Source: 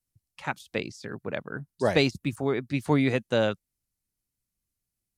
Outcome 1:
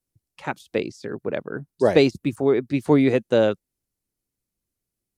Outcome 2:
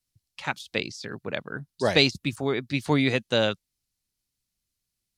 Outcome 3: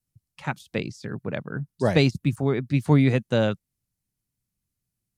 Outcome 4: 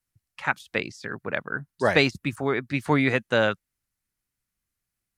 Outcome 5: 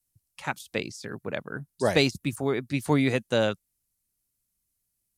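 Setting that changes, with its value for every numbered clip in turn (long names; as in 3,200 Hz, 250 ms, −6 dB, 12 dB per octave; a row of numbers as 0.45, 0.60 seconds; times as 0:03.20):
parametric band, centre frequency: 390, 4,100, 140, 1,600, 12,000 Hertz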